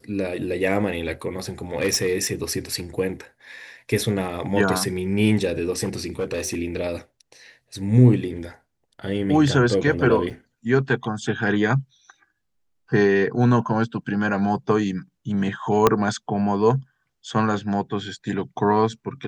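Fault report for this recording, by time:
1.76–2.56 s: clipped -15.5 dBFS
5.83–6.55 s: clipped -20.5 dBFS
10.30–10.31 s: dropout 6.8 ms
15.87 s: pop -2 dBFS

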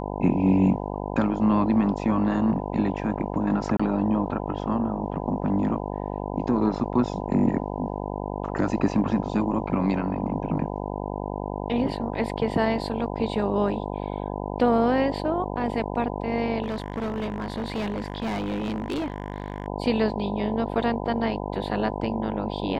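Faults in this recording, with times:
buzz 50 Hz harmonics 20 -31 dBFS
3.77–3.79 s: dropout 25 ms
16.62–19.68 s: clipped -24.5 dBFS

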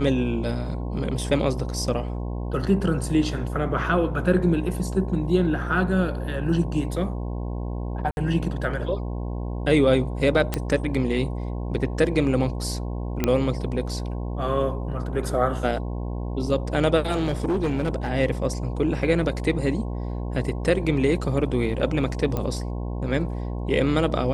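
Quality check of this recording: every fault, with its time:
buzz 60 Hz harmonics 18 -29 dBFS
8.11–8.17 s: dropout 61 ms
10.54 s: pop -9 dBFS
13.24 s: pop -8 dBFS
17.11–18.09 s: clipped -19.5 dBFS
22.37 s: pop -14 dBFS

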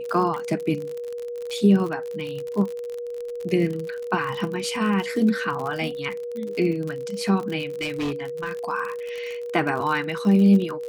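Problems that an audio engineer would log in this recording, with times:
crackle 49 per s -28 dBFS
whine 480 Hz -29 dBFS
7.81–8.57 s: clipped -23 dBFS

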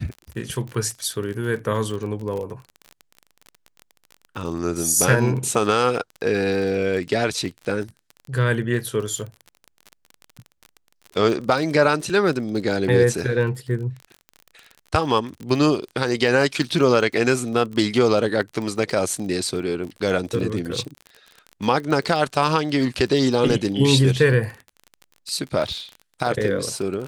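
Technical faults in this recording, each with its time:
crackle 33 per s -29 dBFS

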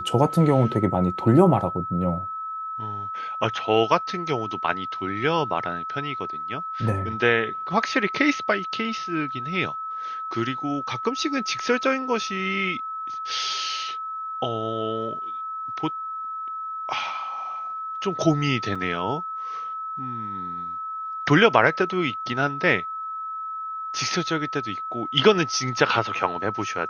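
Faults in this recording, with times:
whine 1.3 kHz -29 dBFS
18.75–18.76 s: dropout 5.3 ms

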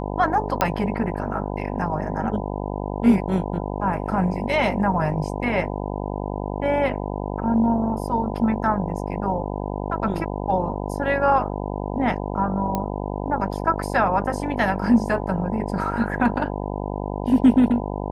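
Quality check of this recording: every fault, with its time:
buzz 50 Hz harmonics 20 -28 dBFS
0.61 s: pop -5 dBFS
12.75 s: pop -11 dBFS

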